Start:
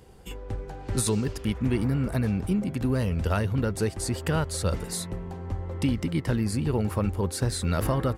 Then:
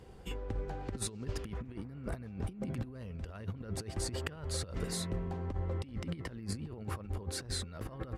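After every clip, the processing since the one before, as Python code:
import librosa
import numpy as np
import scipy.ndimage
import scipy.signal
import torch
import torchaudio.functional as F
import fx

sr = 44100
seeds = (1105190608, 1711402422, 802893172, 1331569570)

y = fx.high_shelf(x, sr, hz=7600.0, db=-11.5)
y = fx.notch(y, sr, hz=880.0, q=21.0)
y = fx.over_compress(y, sr, threshold_db=-31.0, ratio=-0.5)
y = y * librosa.db_to_amplitude(-6.5)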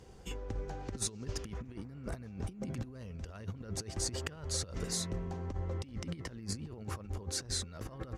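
y = fx.peak_eq(x, sr, hz=6200.0, db=10.5, octaves=0.7)
y = y * librosa.db_to_amplitude(-1.5)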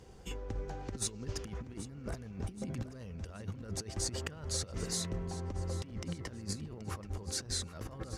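y = 10.0 ** (-18.0 / 20.0) * np.tanh(x / 10.0 ** (-18.0 / 20.0))
y = fx.echo_feedback(y, sr, ms=779, feedback_pct=48, wet_db=-15.0)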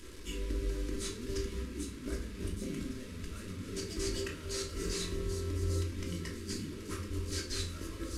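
y = fx.delta_mod(x, sr, bps=64000, step_db=-45.0)
y = fx.fixed_phaser(y, sr, hz=310.0, stages=4)
y = fx.room_shoebox(y, sr, seeds[0], volume_m3=610.0, walls='furnished', distance_m=2.9)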